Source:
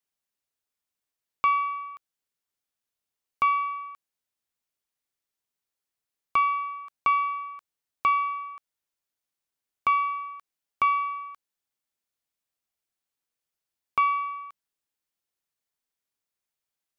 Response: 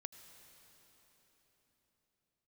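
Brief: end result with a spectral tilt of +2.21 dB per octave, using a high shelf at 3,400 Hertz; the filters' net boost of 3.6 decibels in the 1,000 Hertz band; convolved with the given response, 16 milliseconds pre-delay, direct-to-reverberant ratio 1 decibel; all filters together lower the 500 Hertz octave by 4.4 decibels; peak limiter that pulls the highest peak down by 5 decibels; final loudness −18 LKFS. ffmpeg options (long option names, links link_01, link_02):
-filter_complex "[0:a]equalizer=frequency=500:width_type=o:gain=-8,equalizer=frequency=1000:width_type=o:gain=4.5,highshelf=frequency=3400:gain=7.5,alimiter=limit=-15.5dB:level=0:latency=1,asplit=2[link_01][link_02];[1:a]atrim=start_sample=2205,adelay=16[link_03];[link_02][link_03]afir=irnorm=-1:irlink=0,volume=3.5dB[link_04];[link_01][link_04]amix=inputs=2:normalize=0,volume=4.5dB"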